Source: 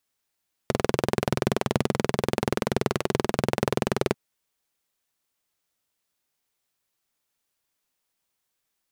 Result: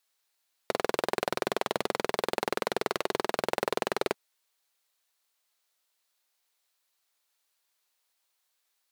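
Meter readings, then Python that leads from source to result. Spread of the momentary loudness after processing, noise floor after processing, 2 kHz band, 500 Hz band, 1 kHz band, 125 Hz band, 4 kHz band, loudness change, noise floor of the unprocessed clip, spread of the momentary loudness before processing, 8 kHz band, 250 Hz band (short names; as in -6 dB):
2 LU, -78 dBFS, -1.0 dB, -4.0 dB, -1.0 dB, -18.5 dB, -1.5 dB, -4.5 dB, -80 dBFS, 2 LU, -4.0 dB, -10.5 dB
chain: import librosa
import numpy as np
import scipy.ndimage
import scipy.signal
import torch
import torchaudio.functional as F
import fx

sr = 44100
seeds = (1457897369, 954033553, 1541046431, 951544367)

p1 = scipy.signal.sosfilt(scipy.signal.butter(2, 550.0, 'highpass', fs=sr, output='sos'), x)
p2 = fx.peak_eq(p1, sr, hz=4100.0, db=4.0, octaves=0.36)
p3 = fx.fold_sine(p2, sr, drive_db=7, ceiling_db=-6.0)
p4 = p2 + (p3 * 10.0 ** (-5.0 / 20.0))
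y = p4 * 10.0 ** (-7.5 / 20.0)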